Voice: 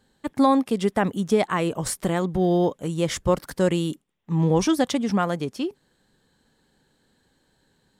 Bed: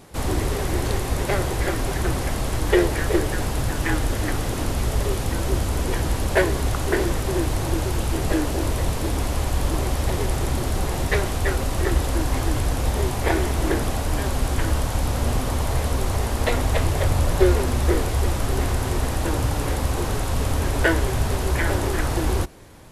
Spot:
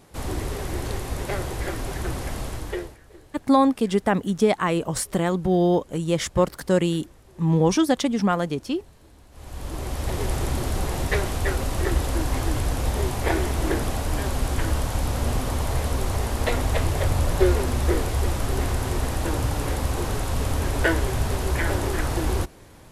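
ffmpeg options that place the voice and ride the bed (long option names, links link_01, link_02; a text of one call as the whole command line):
ffmpeg -i stem1.wav -i stem2.wav -filter_complex "[0:a]adelay=3100,volume=1dB[link_01];[1:a]volume=20.5dB,afade=type=out:start_time=2.41:duration=0.57:silence=0.0749894,afade=type=in:start_time=9.31:duration=1.01:silence=0.0501187[link_02];[link_01][link_02]amix=inputs=2:normalize=0" out.wav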